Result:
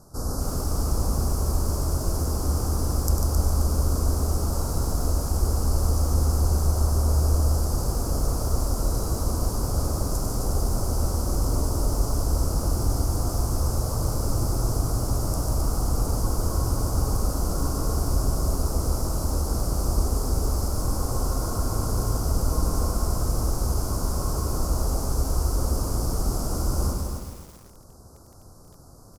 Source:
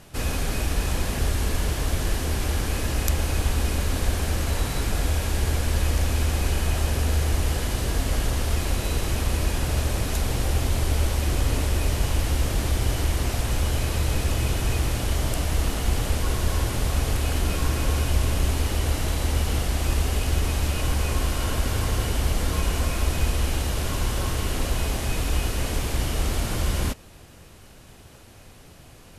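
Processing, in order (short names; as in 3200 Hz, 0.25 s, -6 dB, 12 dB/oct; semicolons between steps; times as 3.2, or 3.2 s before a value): elliptic band-stop 1300–4900 Hz, stop band 40 dB; loudspeakers at several distances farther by 34 m -8 dB, 50 m -6 dB; lo-fi delay 0.265 s, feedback 35%, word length 7-bit, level -5.5 dB; gain -2 dB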